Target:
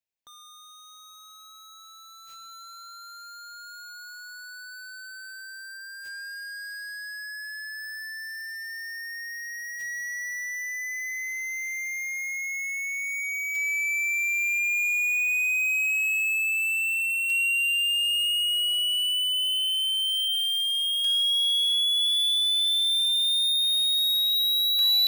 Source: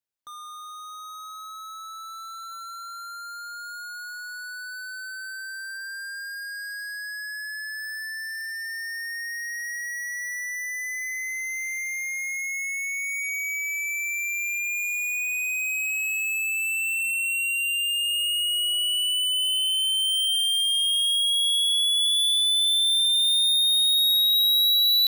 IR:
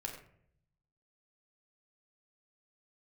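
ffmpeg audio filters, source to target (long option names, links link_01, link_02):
-af "acrusher=bits=4:mode=log:mix=0:aa=0.000001,equalizer=frequency=1250:width_type=o:width=0.33:gain=-11,equalizer=frequency=2500:width_type=o:width=0.33:gain=6,equalizer=frequency=10000:width_type=o:width=0.33:gain=-7,volume=-2.5dB"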